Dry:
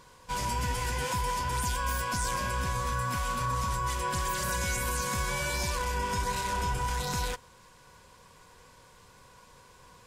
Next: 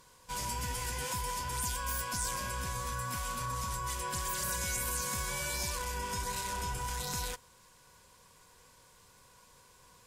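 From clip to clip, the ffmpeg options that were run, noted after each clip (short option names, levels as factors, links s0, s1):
-af "aemphasis=mode=production:type=cd,volume=0.473"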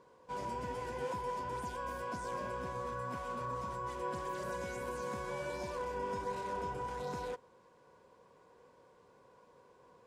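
-af "bandpass=f=440:t=q:w=1.2:csg=0,volume=2.11"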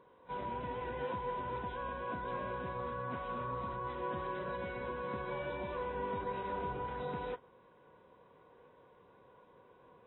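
-ar 24000 -c:a aac -b:a 16k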